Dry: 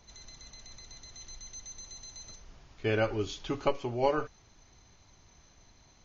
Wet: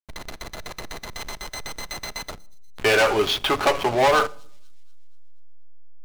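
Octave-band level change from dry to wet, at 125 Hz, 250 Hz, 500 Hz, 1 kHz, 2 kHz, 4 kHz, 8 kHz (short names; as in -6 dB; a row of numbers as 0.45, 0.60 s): +2.0 dB, +6.0 dB, +10.0 dB, +13.5 dB, +16.5 dB, +17.0 dB, n/a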